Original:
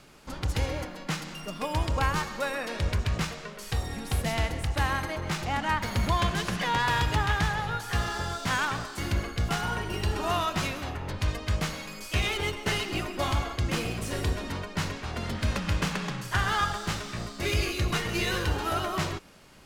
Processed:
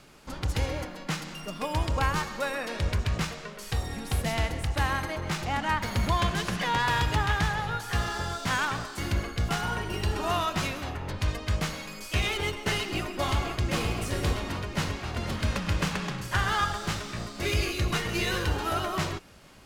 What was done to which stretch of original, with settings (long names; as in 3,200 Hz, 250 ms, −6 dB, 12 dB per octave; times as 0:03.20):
0:12.76–0:13.80: delay throw 520 ms, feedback 75%, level −7.5 dB